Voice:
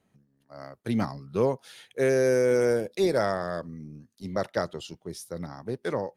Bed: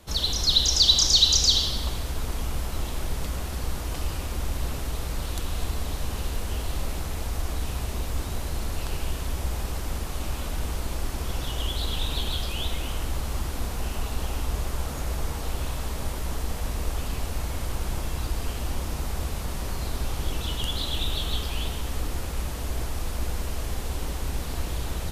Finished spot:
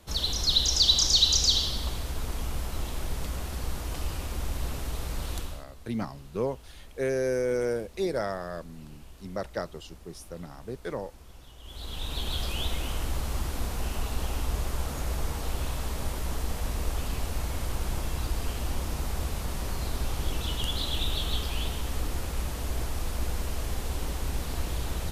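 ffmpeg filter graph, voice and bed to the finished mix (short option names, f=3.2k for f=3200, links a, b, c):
-filter_complex "[0:a]adelay=5000,volume=-5dB[a];[1:a]volume=15.5dB,afade=t=out:st=5.36:d=0.28:silence=0.141254,afade=t=in:st=11.62:d=0.84:silence=0.11885[b];[a][b]amix=inputs=2:normalize=0"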